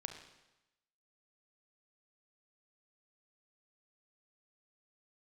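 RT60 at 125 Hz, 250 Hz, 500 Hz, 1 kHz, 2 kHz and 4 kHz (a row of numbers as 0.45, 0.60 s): 0.95, 0.95, 0.95, 1.0, 0.95, 0.95 s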